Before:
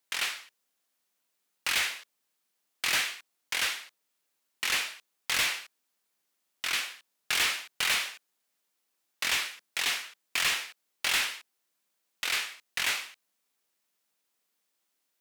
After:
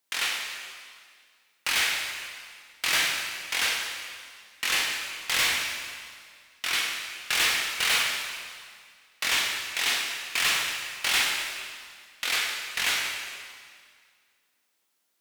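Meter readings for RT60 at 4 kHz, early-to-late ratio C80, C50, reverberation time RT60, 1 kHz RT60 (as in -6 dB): 1.9 s, 3.5 dB, 2.0 dB, 2.0 s, 2.0 s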